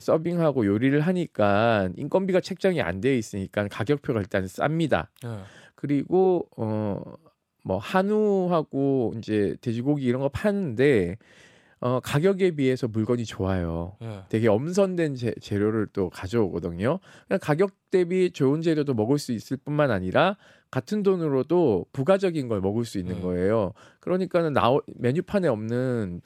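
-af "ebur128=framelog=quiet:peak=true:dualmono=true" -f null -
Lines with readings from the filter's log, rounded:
Integrated loudness:
  I:         -21.9 LUFS
  Threshold: -32.2 LUFS
Loudness range:
  LRA:         2.4 LU
  Threshold: -42.3 LUFS
  LRA low:   -23.5 LUFS
  LRA high:  -21.1 LUFS
True peak:
  Peak:       -5.0 dBFS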